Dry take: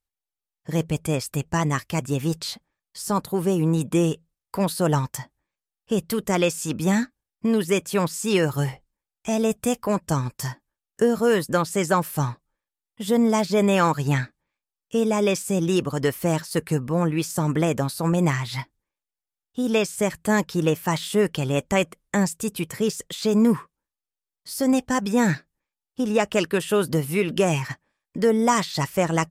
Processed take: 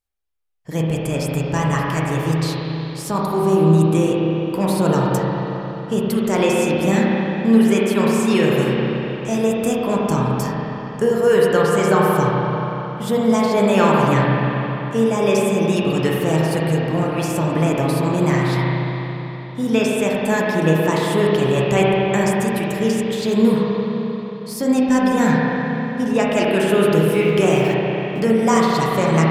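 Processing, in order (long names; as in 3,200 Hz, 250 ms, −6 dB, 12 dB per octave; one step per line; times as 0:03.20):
0:27.08–0:28.20: centre clipping without the shift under −39 dBFS
spring reverb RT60 3.8 s, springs 31/44 ms, chirp 45 ms, DRR −4.5 dB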